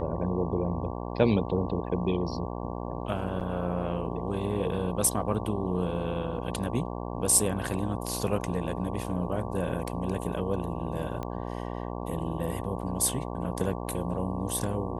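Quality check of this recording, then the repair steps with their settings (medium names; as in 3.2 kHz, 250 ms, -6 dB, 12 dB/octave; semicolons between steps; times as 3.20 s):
buzz 60 Hz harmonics 19 -35 dBFS
3.40–3.41 s: dropout 7.4 ms
11.23 s: pop -22 dBFS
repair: de-click; de-hum 60 Hz, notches 19; interpolate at 3.40 s, 7.4 ms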